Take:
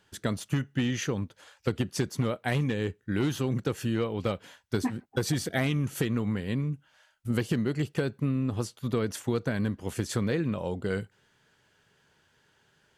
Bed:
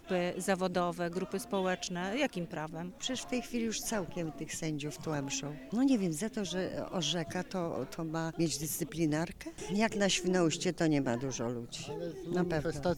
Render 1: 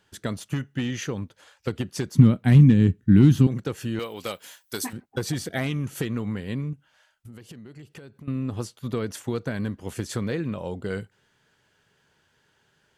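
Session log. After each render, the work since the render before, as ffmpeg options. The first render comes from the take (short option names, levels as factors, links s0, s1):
-filter_complex "[0:a]asettb=1/sr,asplit=3[s0][s1][s2];[s0]atrim=end=2.154[s3];[s1]atrim=start=2.15:end=3.47,asetpts=PTS-STARTPTS,afade=t=in:d=0.004:c=qsin,afade=t=out:st=1.316:d=0.004:c=qsin,lowshelf=f=340:t=q:w=1.5:g=13.5[s4];[s2]atrim=start=3.466[s5];[s3][s4]acrossfade=d=0.004:c1=hsin:c2=qsin[s6];[s6][s5]acrossfade=d=0.004:c1=qsin:c2=hsin,asettb=1/sr,asplit=3[s7][s8][s9];[s7]atrim=end=3.994[s10];[s8]atrim=start=3.99:end=4.93,asetpts=PTS-STARTPTS,afade=t=in:d=0.004:c=qsin,afade=t=out:st=0.936:d=0.004:c=qsin,aemphasis=mode=production:type=riaa[s11];[s9]atrim=start=4.926[s12];[s10][s11]acrossfade=d=0.004:c1=hsin:c2=qsin[s13];[s13][s12]acrossfade=d=0.004:c1=qsin:c2=hsin,asettb=1/sr,asplit=3[s14][s15][s16];[s14]atrim=end=6.734[s17];[s15]atrim=start=6.73:end=8.28,asetpts=PTS-STARTPTS,afade=t=in:d=0.004:c=qsin,afade=t=out:st=1.546:d=0.004:c=qsin,acompressor=threshold=0.00891:ratio=6:attack=3.2:release=140:knee=1:detection=peak[s18];[s16]atrim=start=8.276[s19];[s17][s18]acrossfade=d=0.004:c1=hsin:c2=qsin[s20];[s20][s19]acrossfade=d=0.004:c1=qsin:c2=hsin"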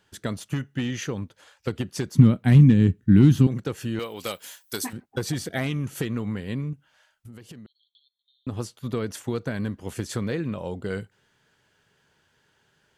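-filter_complex "[0:a]asettb=1/sr,asplit=3[s0][s1][s2];[s0]atrim=end=4.194[s3];[s1]atrim=start=4.19:end=4.76,asetpts=PTS-STARTPTS,afade=t=in:d=0.004:c=qsin,afade=t=out:st=0.566:d=0.004:c=qsin,highshelf=f=4500:g=5.5[s4];[s2]atrim=start=4.756[s5];[s3][s4]acrossfade=d=0.004:c1=hsin:c2=qsin[s6];[s6][s5]acrossfade=d=0.004:c1=qsin:c2=hsin,asettb=1/sr,asplit=3[s7][s8][s9];[s7]atrim=end=7.664[s10];[s8]atrim=start=7.66:end=8.47,asetpts=PTS-STARTPTS,afade=t=in:d=0.004:c=qsin,afade=t=out:st=0.806:d=0.004:c=qsin,asuperpass=centerf=3700:order=20:qfactor=3[s11];[s9]atrim=start=8.466[s12];[s10][s11]acrossfade=d=0.004:c1=hsin:c2=qsin[s13];[s13][s12]acrossfade=d=0.004:c1=qsin:c2=hsin"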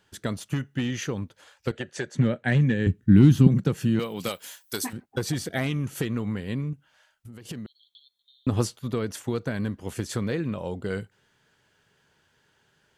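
-filter_complex "[0:a]asettb=1/sr,asplit=3[s0][s1][s2];[s0]atrim=end=1.714[s3];[s1]atrim=start=1.71:end=2.87,asetpts=PTS-STARTPTS,afade=t=in:d=0.004:c=qsin,afade=t=out:st=1.156:d=0.004:c=qsin,highpass=180,equalizer=f=190:t=q:w=4:g=-10,equalizer=f=280:t=q:w=4:g=-9,equalizer=f=560:t=q:w=4:g=7,equalizer=f=1100:t=q:w=4:g=-7,equalizer=f=1700:t=q:w=4:g=9,equalizer=f=5100:t=q:w=4:g=-9,lowpass=f=7900:w=0.5412,lowpass=f=7900:w=1.3066[s4];[s2]atrim=start=2.866[s5];[s3][s4]acrossfade=d=0.004:c1=hsin:c2=qsin[s6];[s6][s5]acrossfade=d=0.004:c1=qsin:c2=hsin,asettb=1/sr,asplit=3[s7][s8][s9];[s7]atrim=end=3.464[s10];[s8]atrim=start=3.46:end=4.29,asetpts=PTS-STARTPTS,afade=t=in:d=0.004:c=qsin,afade=t=out:st=0.826:d=0.004:c=qsin,equalizer=f=170:w=1.5:g=13[s11];[s9]atrim=start=4.286[s12];[s10][s11]acrossfade=d=0.004:c1=hsin:c2=qsin[s13];[s13][s12]acrossfade=d=0.004:c1=qsin:c2=hsin,asettb=1/sr,asplit=3[s14][s15][s16];[s14]atrim=end=7.454[s17];[s15]atrim=start=7.45:end=8.77,asetpts=PTS-STARTPTS,afade=t=in:d=0.004:c=qsin,afade=t=out:st=1.316:d=0.004:c=qsin,acontrast=87[s18];[s16]atrim=start=8.766[s19];[s17][s18]acrossfade=d=0.004:c1=hsin:c2=qsin[s20];[s20][s19]acrossfade=d=0.004:c1=qsin:c2=hsin"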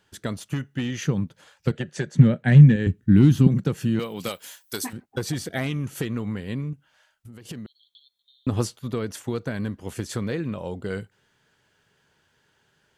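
-filter_complex "[0:a]asettb=1/sr,asplit=3[s0][s1][s2];[s0]atrim=end=1.044[s3];[s1]atrim=start=1.04:end=2.76,asetpts=PTS-STARTPTS,afade=t=in:d=0.004:c=qsin,afade=t=out:st=1.716:d=0.004:c=qsin,equalizer=f=160:w=1.5:g=12.5[s4];[s2]atrim=start=2.756[s5];[s3][s4]acrossfade=d=0.004:c1=hsin:c2=qsin[s6];[s6][s5]acrossfade=d=0.004:c1=qsin:c2=hsin"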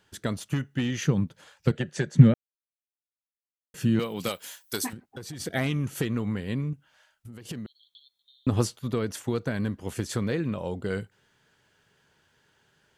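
-filter_complex "[0:a]asplit=3[s0][s1][s2];[s0]afade=t=out:st=4.93:d=0.02[s3];[s1]acompressor=threshold=0.00891:ratio=2.5:attack=3.2:release=140:knee=1:detection=peak,afade=t=in:st=4.93:d=0.02,afade=t=out:st=5.39:d=0.02[s4];[s2]afade=t=in:st=5.39:d=0.02[s5];[s3][s4][s5]amix=inputs=3:normalize=0,asplit=3[s6][s7][s8];[s6]atrim=end=2.34,asetpts=PTS-STARTPTS,afade=t=out:st=2.336:d=0.004:c=hsin[s9];[s7]atrim=start=2.34:end=3.74,asetpts=PTS-STARTPTS,volume=0[s10];[s8]atrim=start=3.74,asetpts=PTS-STARTPTS,afade=t=in:d=0.004:c=hsin[s11];[s9][s10][s11]concat=n=3:v=0:a=1"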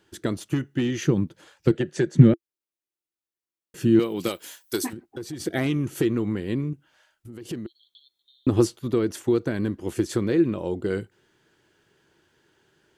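-af "equalizer=f=340:w=3.3:g=14"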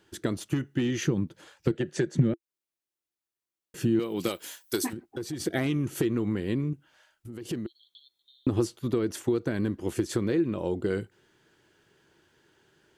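-af "acompressor=threshold=0.0631:ratio=2.5"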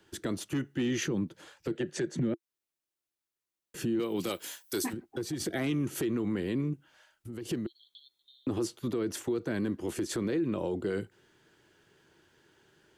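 -filter_complex "[0:a]acrossover=split=150|430|2700[s0][s1][s2][s3];[s0]acompressor=threshold=0.00708:ratio=6[s4];[s4][s1][s2][s3]amix=inputs=4:normalize=0,alimiter=limit=0.0708:level=0:latency=1:release=10"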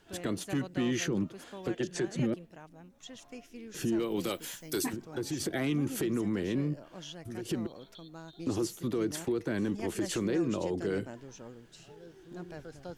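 -filter_complex "[1:a]volume=0.251[s0];[0:a][s0]amix=inputs=2:normalize=0"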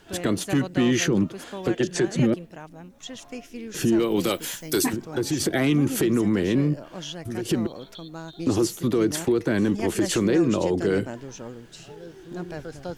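-af "volume=2.99"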